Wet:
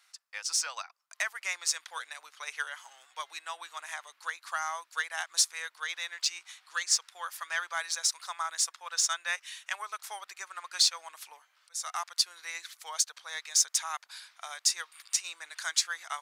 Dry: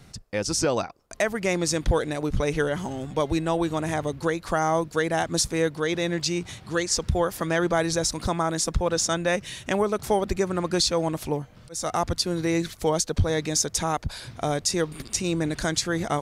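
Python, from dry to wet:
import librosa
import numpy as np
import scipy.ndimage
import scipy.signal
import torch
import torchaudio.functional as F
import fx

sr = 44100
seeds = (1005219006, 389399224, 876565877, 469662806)

p1 = scipy.signal.sosfilt(scipy.signal.butter(4, 1100.0, 'highpass', fs=sr, output='sos'), x)
p2 = 10.0 ** (-26.5 / 20.0) * np.tanh(p1 / 10.0 ** (-26.5 / 20.0))
p3 = p1 + (p2 * 10.0 ** (-8.0 / 20.0))
p4 = fx.upward_expand(p3, sr, threshold_db=-38.0, expansion=1.5)
y = p4 * 10.0 ** (-1.0 / 20.0)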